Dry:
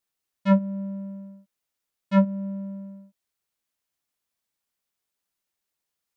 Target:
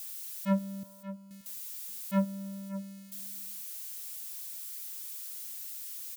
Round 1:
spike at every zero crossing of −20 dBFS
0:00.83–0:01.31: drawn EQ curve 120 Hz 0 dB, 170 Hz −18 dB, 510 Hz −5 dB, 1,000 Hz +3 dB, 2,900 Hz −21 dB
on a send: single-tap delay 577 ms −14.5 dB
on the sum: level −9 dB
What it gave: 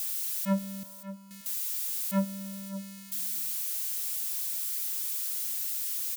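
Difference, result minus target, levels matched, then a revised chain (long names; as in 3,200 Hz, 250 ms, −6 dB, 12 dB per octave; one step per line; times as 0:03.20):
spike at every zero crossing: distortion +9 dB
spike at every zero crossing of −29 dBFS
0:00.83–0:01.31: drawn EQ curve 120 Hz 0 dB, 170 Hz −18 dB, 510 Hz −5 dB, 1,000 Hz +3 dB, 2,900 Hz −21 dB
on a send: single-tap delay 577 ms −14.5 dB
on the sum: level −9 dB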